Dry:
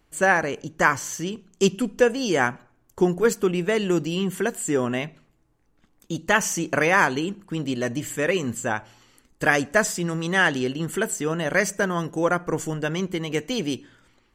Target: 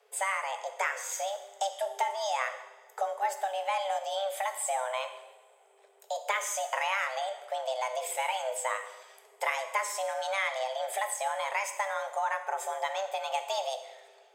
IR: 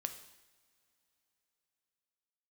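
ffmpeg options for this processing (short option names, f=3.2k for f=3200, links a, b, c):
-filter_complex "[0:a]acompressor=threshold=-28dB:ratio=4,afreqshift=390[a];[1:a]atrim=start_sample=2205,asetrate=41454,aresample=44100[b];[a][b]afir=irnorm=-1:irlink=0"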